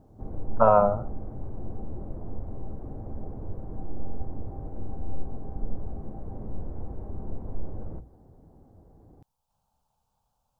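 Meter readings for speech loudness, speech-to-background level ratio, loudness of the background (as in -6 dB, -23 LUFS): -21.5 LUFS, 18.5 dB, -40.0 LUFS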